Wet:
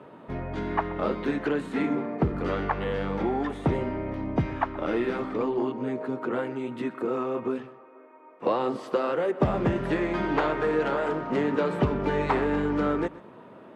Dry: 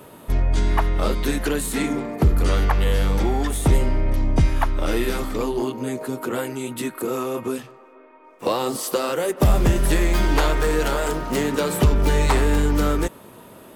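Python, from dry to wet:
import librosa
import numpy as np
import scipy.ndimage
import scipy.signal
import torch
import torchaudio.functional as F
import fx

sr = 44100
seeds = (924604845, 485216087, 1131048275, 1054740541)

p1 = fx.bandpass_edges(x, sr, low_hz=140.0, high_hz=2000.0)
p2 = p1 + fx.echo_single(p1, sr, ms=125, db=-19.0, dry=0)
y = F.gain(torch.from_numpy(p2), -2.5).numpy()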